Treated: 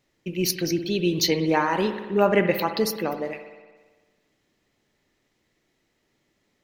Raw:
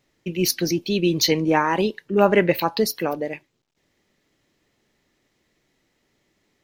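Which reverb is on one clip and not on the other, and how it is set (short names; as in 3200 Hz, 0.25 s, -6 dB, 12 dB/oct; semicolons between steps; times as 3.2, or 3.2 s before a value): spring tank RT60 1.4 s, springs 56 ms, chirp 45 ms, DRR 8 dB; gain -3 dB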